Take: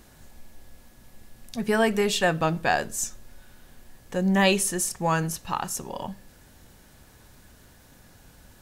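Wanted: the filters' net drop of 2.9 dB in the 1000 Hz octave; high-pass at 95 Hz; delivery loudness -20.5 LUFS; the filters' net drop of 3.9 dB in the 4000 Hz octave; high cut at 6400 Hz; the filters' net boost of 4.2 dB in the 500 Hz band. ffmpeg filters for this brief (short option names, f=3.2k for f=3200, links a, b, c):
-af "highpass=95,lowpass=6.4k,equalizer=f=500:t=o:g=7.5,equalizer=f=1k:t=o:g=-8,equalizer=f=4k:t=o:g=-4.5,volume=4dB"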